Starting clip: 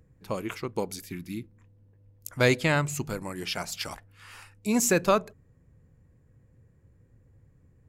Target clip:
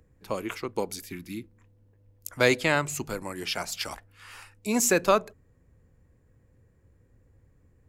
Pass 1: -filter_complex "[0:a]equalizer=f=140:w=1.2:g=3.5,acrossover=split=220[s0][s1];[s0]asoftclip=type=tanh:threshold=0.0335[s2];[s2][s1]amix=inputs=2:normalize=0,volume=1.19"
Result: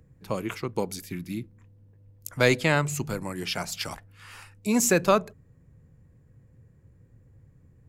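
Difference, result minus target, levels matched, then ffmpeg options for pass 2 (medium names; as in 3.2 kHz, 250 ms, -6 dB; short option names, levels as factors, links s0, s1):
125 Hz band +6.0 dB
-filter_complex "[0:a]equalizer=f=140:w=1.2:g=-7,acrossover=split=220[s0][s1];[s0]asoftclip=type=tanh:threshold=0.0335[s2];[s2][s1]amix=inputs=2:normalize=0,volume=1.19"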